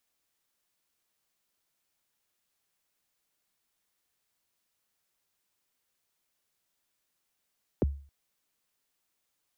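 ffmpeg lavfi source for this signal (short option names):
-f lavfi -i "aevalsrc='0.106*pow(10,-3*t/0.42)*sin(2*PI*(570*0.021/log(70/570)*(exp(log(70/570)*min(t,0.021)/0.021)-1)+70*max(t-0.021,0)))':d=0.27:s=44100"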